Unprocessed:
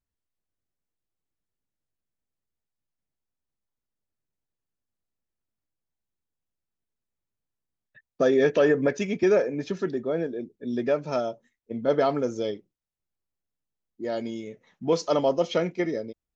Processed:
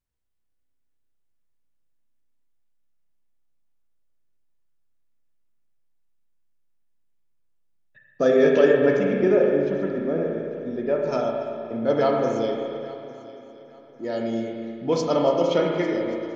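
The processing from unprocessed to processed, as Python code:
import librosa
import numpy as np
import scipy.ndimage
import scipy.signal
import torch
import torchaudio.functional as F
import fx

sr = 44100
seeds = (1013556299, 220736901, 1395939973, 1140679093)

y = fx.lowpass(x, sr, hz=1300.0, slope=6, at=(8.97, 10.99))
y = fx.echo_heads(y, sr, ms=283, heads='first and third', feedback_pct=50, wet_db=-19.0)
y = fx.rev_spring(y, sr, rt60_s=2.3, pass_ms=(31, 35), chirp_ms=45, drr_db=-0.5)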